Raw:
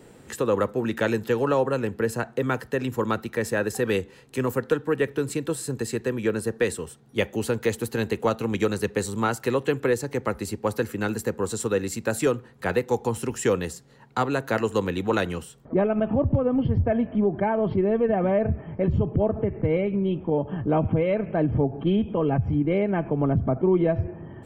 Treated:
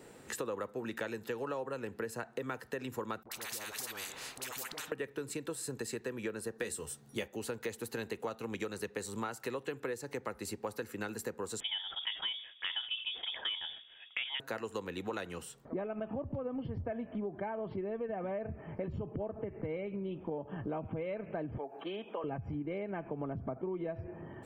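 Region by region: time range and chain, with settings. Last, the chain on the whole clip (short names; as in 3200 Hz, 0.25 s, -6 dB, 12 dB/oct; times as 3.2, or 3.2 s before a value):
3.23–4.92 dispersion highs, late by 84 ms, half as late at 660 Hz + compressor 2:1, threshold -34 dBFS + spectral compressor 4:1
6.58–7.28 tone controls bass +4 dB, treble +7 dB + doubler 14 ms -8 dB
11.6–14.4 inverted band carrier 3500 Hz + sustainer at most 140 dB/s
21.58–22.24 HPF 610 Hz + three-band squash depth 40%
whole clip: low shelf 260 Hz -9 dB; notch 3200 Hz, Q 25; compressor 5:1, threshold -34 dBFS; gain -2 dB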